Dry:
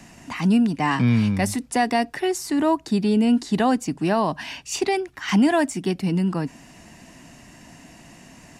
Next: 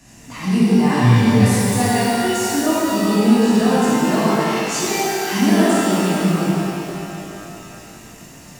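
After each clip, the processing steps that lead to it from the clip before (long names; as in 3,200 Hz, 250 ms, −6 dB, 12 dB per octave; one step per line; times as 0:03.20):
bass and treble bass +5 dB, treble +7 dB
reverb with rising layers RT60 2.8 s, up +12 semitones, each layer −8 dB, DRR −11 dB
level −9 dB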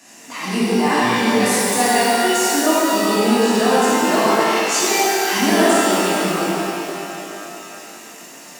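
Bessel high-pass filter 370 Hz, order 4
level +4.5 dB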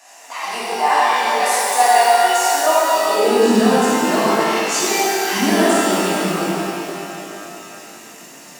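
high-pass filter sweep 730 Hz → 100 Hz, 0:03.06–0:03.97
level −1 dB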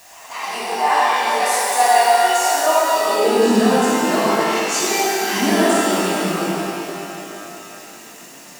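bit-depth reduction 8 bits, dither triangular
backwards echo 188 ms −17 dB
level −1 dB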